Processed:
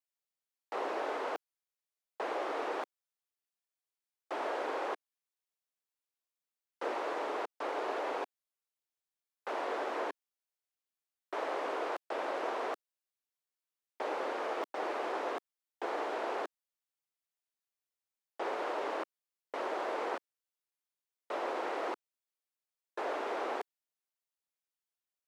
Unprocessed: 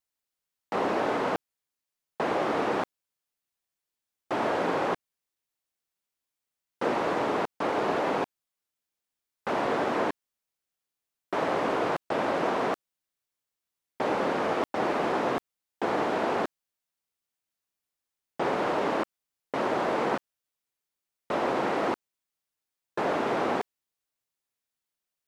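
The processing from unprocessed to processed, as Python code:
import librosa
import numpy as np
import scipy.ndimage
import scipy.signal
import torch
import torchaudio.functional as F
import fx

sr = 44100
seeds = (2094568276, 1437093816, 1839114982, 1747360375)

y = scipy.signal.sosfilt(scipy.signal.butter(4, 350.0, 'highpass', fs=sr, output='sos'), x)
y = y * 10.0 ** (-8.0 / 20.0)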